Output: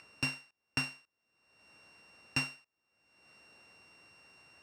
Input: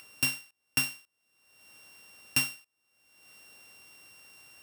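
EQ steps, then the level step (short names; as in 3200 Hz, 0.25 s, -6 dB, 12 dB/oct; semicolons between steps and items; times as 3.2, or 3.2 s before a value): air absorption 110 m; bell 3200 Hz -13 dB 0.22 oct; 0.0 dB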